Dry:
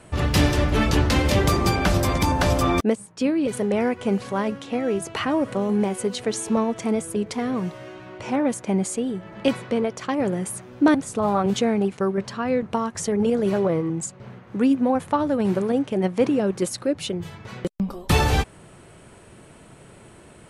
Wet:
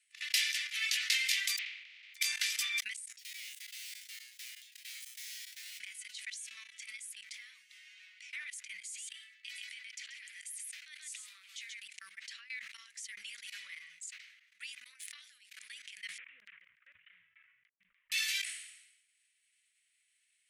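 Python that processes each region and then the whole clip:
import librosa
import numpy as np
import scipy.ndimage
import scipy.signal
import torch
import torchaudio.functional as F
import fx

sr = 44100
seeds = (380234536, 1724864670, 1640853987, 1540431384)

y = fx.spec_flatten(x, sr, power=0.13, at=(1.57, 2.14), fade=0.02)
y = fx.lowpass(y, sr, hz=2300.0, slope=24, at=(1.57, 2.14), fade=0.02)
y = fx.peak_eq(y, sr, hz=1600.0, db=-13.5, octaves=1.1, at=(1.57, 2.14), fade=0.02)
y = fx.chain(y, sr, fx.overflow_wrap(gain_db=27.0),
    fx.comb_fb(f0_hz=62.0, decay_s=0.5, harmonics='odd', damping=0.0, mix_pct=90), at=(3.08, 5.8))
y = fx.chain(y, sr, fx.highpass(hz=1300.0, slope=12),
    fx.echo_single(ms=133, db=-7.5), at=(8.81, 11.81))
y = fx.chain(y, sr, fx.high_shelf(hz=2400.0, db=8.0),
    fx.over_compress(threshold_db=-28.0, ratio=-0.5),
    fx.tube_stage(drive_db=21.0, bias=0.7), at=(14.84, 15.51))
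y = fx.chain(y, sr, fx.cvsd(bps=16000),
    fx.filter_lfo_lowpass(shape='saw_down', hz=3.4, low_hz=340.0, high_hz=1500.0, q=0.97), at=(16.18, 18.12))
y = fx.level_steps(y, sr, step_db=22)
y = scipy.signal.sosfilt(scipy.signal.ellip(4, 1.0, 60, 2000.0, 'highpass', fs=sr, output='sos'), y)
y = fx.sustainer(y, sr, db_per_s=62.0)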